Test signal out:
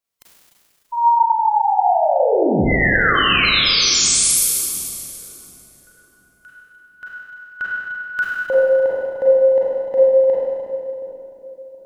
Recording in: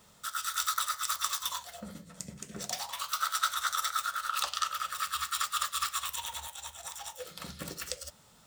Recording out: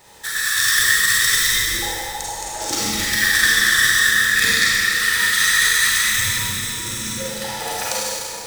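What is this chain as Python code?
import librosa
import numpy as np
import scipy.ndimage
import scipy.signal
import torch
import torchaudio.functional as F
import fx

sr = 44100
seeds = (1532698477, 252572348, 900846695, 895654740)

y = fx.band_invert(x, sr, width_hz=1000)
y = fx.echo_wet_lowpass(y, sr, ms=723, feedback_pct=35, hz=510.0, wet_db=-10.5)
y = fx.rev_schroeder(y, sr, rt60_s=2.4, comb_ms=33, drr_db=-7.0)
y = y * librosa.db_to_amplitude(9.0)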